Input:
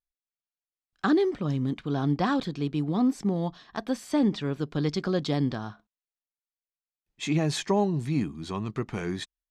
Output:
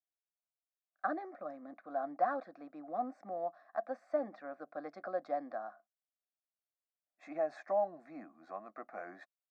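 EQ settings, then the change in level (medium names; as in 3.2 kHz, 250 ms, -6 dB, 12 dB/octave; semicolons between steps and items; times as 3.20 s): ladder band-pass 790 Hz, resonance 55%; static phaser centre 620 Hz, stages 8; +7.0 dB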